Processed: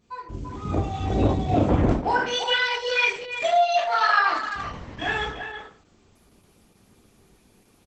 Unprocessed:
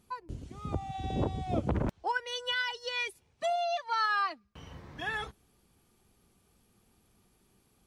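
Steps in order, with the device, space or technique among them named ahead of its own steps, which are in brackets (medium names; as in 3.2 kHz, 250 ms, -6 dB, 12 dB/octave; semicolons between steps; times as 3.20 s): speakerphone in a meeting room (reverberation RT60 0.50 s, pre-delay 16 ms, DRR -4 dB; speakerphone echo 340 ms, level -8 dB; level rider gain up to 5.5 dB; Opus 12 kbps 48 kHz)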